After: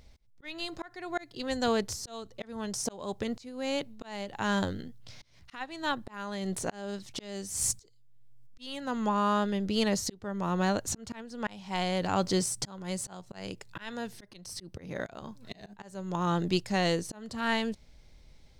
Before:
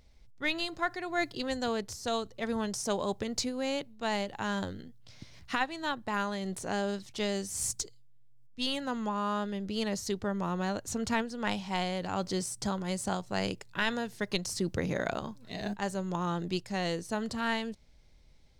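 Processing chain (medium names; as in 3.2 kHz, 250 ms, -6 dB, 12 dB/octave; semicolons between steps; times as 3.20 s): 14.13–15.05 s: band-stop 7 kHz, Q 6.1; slow attack 529 ms; trim +5 dB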